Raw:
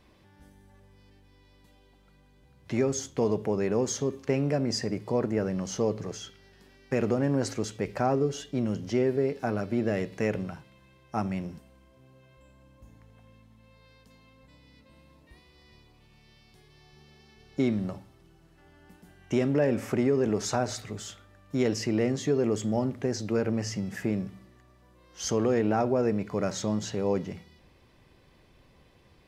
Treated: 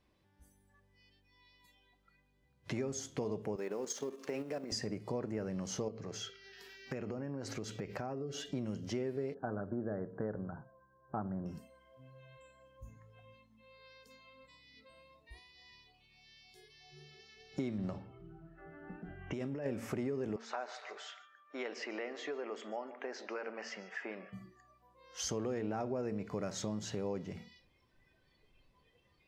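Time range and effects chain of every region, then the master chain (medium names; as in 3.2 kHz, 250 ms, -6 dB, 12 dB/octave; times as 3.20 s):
3.56–4.72 s: companding laws mixed up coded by mu + high-pass 290 Hz + level held to a coarse grid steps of 10 dB
5.88–8.46 s: peaking EQ 9.1 kHz -7 dB 0.81 oct + compression 2.5:1, threshold -36 dBFS + tape noise reduction on one side only encoder only
9.34–11.46 s: elliptic low-pass 1.6 kHz + tape noise reduction on one side only decoder only
17.78–19.66 s: level-controlled noise filter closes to 1.9 kHz, open at -24 dBFS + compressor with a negative ratio -31 dBFS
20.36–24.33 s: band-pass 760–2600 Hz + feedback delay 146 ms, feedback 46%, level -17 dB
whole clip: de-hum 229.1 Hz, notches 3; spectral noise reduction 16 dB; compression 3:1, threshold -41 dBFS; trim +2 dB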